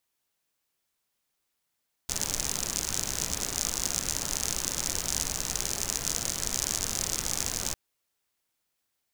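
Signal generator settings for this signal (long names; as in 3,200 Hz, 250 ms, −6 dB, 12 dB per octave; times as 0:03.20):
rain-like ticks over hiss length 5.65 s, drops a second 70, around 6,400 Hz, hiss −4.5 dB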